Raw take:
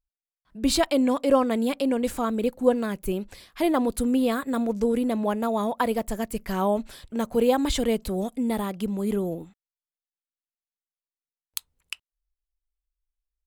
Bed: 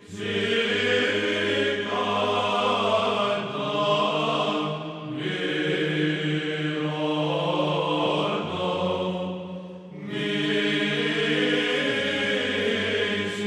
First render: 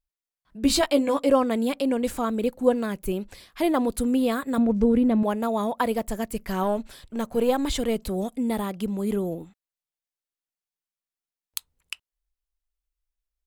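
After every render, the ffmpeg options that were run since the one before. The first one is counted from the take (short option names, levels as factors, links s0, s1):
-filter_complex "[0:a]asettb=1/sr,asplit=3[s0][s1][s2];[s0]atrim=end=0.624[s3];[s1]atrim=start=0.62:end=1.29,asetpts=PTS-STARTPTS,afade=t=in:d=0.004:c=qsin,afade=t=out:st=0.666:d=0.004:c=qsin,asplit=2[s4][s5];[s5]adelay=14,volume=0.596[s6];[s4][s6]amix=inputs=2:normalize=0,atrim=end_sample=29547[s7];[s2]atrim=start=1.286[s8];[s3][s7]acrossfade=d=0.004:c1=hsin:c2=qsin[s9];[s9][s8]acrossfade=d=0.004:c1=qsin:c2=hsin,asettb=1/sr,asplit=3[s10][s11][s12];[s10]atrim=end=4.584[s13];[s11]atrim=start=4.58:end=5.23,asetpts=PTS-STARTPTS,afade=t=in:d=0.004:c=qsin,afade=t=out:st=0.646:d=0.004:c=qsin,bass=f=250:g=10,treble=f=4000:g=-12[s14];[s12]atrim=start=5.226[s15];[s13][s14]acrossfade=d=0.004:c1=hsin:c2=qsin[s16];[s16][s15]acrossfade=d=0.004:c1=qsin:c2=hsin,asettb=1/sr,asplit=3[s17][s18][s19];[s17]atrim=end=6.634[s20];[s18]atrim=start=6.63:end=7.96,asetpts=PTS-STARTPTS,afade=t=in:d=0.004:c=qsin,afade=t=out:st=1.326:d=0.004:c=qsin,aeval=exprs='if(lt(val(0),0),0.708*val(0),val(0))':c=same[s21];[s19]atrim=start=7.956[s22];[s20][s21]acrossfade=d=0.004:c1=hsin:c2=qsin[s23];[s23][s22]acrossfade=d=0.004:c1=qsin:c2=hsin"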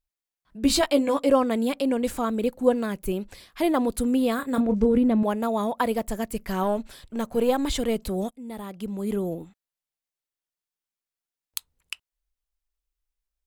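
-filter_complex "[0:a]asettb=1/sr,asplit=3[s0][s1][s2];[s0]atrim=end=4.364[s3];[s1]atrim=start=4.36:end=4.98,asetpts=PTS-STARTPTS,afade=t=in:d=0.004:c=qsin,afade=t=out:st=0.616:d=0.004:c=qsin,asplit=2[s4][s5];[s5]adelay=28,volume=0.316[s6];[s4][s6]amix=inputs=2:normalize=0,atrim=end_sample=27342[s7];[s2]atrim=start=4.976[s8];[s3][s7]acrossfade=d=0.004:c1=hsin:c2=qsin[s9];[s9][s8]acrossfade=d=0.004:c1=qsin:c2=hsin,asplit=2[s10][s11];[s10]atrim=end=8.31,asetpts=PTS-STARTPTS,afade=t=out:st=8.306:d=0.004:c=hsin:silence=0.112202[s12];[s11]atrim=start=8.31,asetpts=PTS-STARTPTS,afade=t=in:d=0.97:silence=0.112202[s13];[s12][s13]concat=n=2:v=0:a=1"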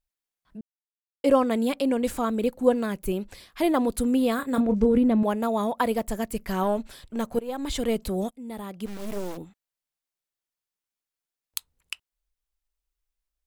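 -filter_complex "[0:a]asplit=3[s0][s1][s2];[s0]afade=t=out:st=8.85:d=0.02[s3];[s1]acrusher=bits=4:dc=4:mix=0:aa=0.000001,afade=t=in:st=8.85:d=0.02,afade=t=out:st=9.36:d=0.02[s4];[s2]afade=t=in:st=9.36:d=0.02[s5];[s3][s4][s5]amix=inputs=3:normalize=0,asplit=4[s6][s7][s8][s9];[s6]atrim=end=0.61,asetpts=PTS-STARTPTS,afade=t=out:st=0.606:d=0.004:c=hsin[s10];[s7]atrim=start=0.61:end=1.24,asetpts=PTS-STARTPTS,volume=0[s11];[s8]atrim=start=1.24:end=7.39,asetpts=PTS-STARTPTS,afade=t=in:d=0.004:c=hsin,afade=t=out:st=6.146:d=0.004:c=hsin:silence=0.0944061[s12];[s9]atrim=start=7.39,asetpts=PTS-STARTPTS,afade=t=in:d=0.49:silence=0.0944061[s13];[s10][s11][s12][s13]concat=n=4:v=0:a=1"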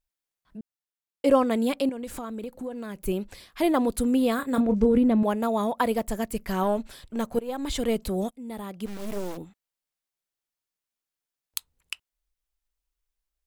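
-filter_complex "[0:a]asettb=1/sr,asplit=3[s0][s1][s2];[s0]atrim=end=1.894[s3];[s1]atrim=start=1.89:end=3.06,asetpts=PTS-STARTPTS,afade=t=in:d=0.004:c=qsin,afade=t=out:st=1.166:d=0.004:c=qsin,acompressor=threshold=0.0251:ratio=5:attack=3.2:release=140:knee=1:detection=peak[s4];[s2]atrim=start=3.056[s5];[s3][s4]acrossfade=d=0.004:c1=hsin:c2=qsin[s6];[s6][s5]acrossfade=d=0.004:c1=qsin:c2=hsin"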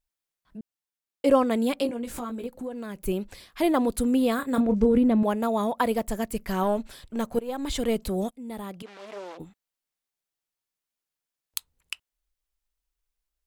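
-filter_complex "[0:a]asettb=1/sr,asplit=3[s0][s1][s2];[s0]atrim=end=1.774[s3];[s1]atrim=start=1.77:end=2.47,asetpts=PTS-STARTPTS,afade=t=in:d=0.004:c=qsin,afade=t=out:st=0.696:d=0.004:c=qsin,asplit=2[s4][s5];[s5]adelay=17,volume=0.631[s6];[s4][s6]amix=inputs=2:normalize=0,atrim=end_sample=30870[s7];[s2]atrim=start=2.466[s8];[s3][s7]acrossfade=d=0.004:c1=hsin:c2=qsin[s9];[s9][s8]acrossfade=d=0.004:c1=qsin:c2=hsin,asettb=1/sr,asplit=3[s10][s11][s12];[s10]atrim=end=8.824[s13];[s11]atrim=start=8.82:end=9.4,asetpts=PTS-STARTPTS,afade=t=in:d=0.004:c=qsin,afade=t=out:st=0.576:d=0.004:c=qsin,highpass=570,lowpass=4100[s14];[s12]atrim=start=9.396[s15];[s13][s14]acrossfade=d=0.004:c1=hsin:c2=qsin[s16];[s16][s15]acrossfade=d=0.004:c1=qsin:c2=hsin"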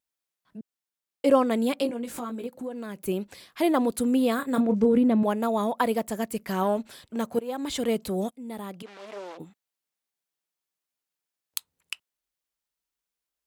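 -af "highpass=130"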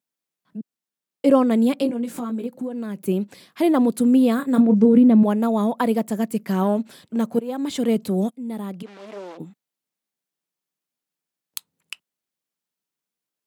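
-af "highpass=140,equalizer=f=180:t=o:w=2:g=10"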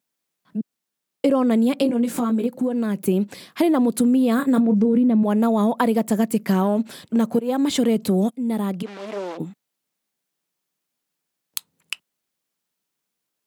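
-filter_complex "[0:a]asplit=2[s0][s1];[s1]alimiter=limit=0.168:level=0:latency=1,volume=1.12[s2];[s0][s2]amix=inputs=2:normalize=0,acompressor=threshold=0.178:ratio=6"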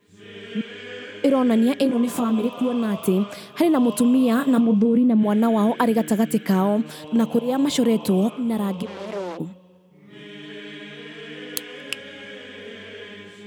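-filter_complex "[1:a]volume=0.211[s0];[0:a][s0]amix=inputs=2:normalize=0"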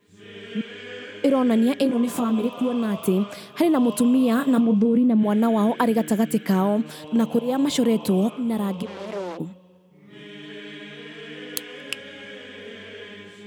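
-af "volume=0.891"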